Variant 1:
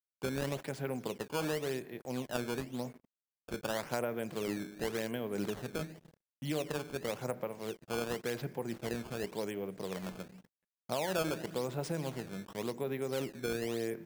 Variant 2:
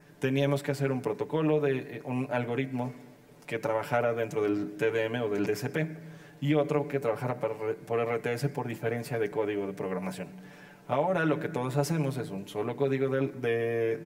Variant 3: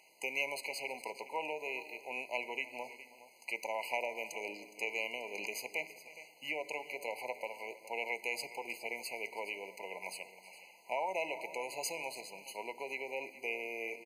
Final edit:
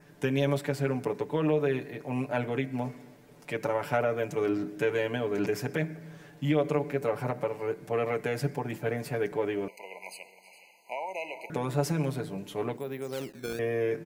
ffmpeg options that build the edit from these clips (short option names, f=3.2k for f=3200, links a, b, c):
-filter_complex "[1:a]asplit=3[a][b][c];[a]atrim=end=9.682[d];[2:a]atrim=start=9.678:end=11.502[e];[b]atrim=start=11.498:end=12.772[f];[0:a]atrim=start=12.768:end=13.592[g];[c]atrim=start=13.588[h];[d][e]acrossfade=d=0.004:c1=hsin:c2=hsin[i];[i][f]acrossfade=d=0.004:c1=hsin:c2=hsin[j];[j][g]acrossfade=d=0.004:c1=hsin:c2=hsin[k];[k][h]acrossfade=d=0.004:c1=hsin:c2=hsin"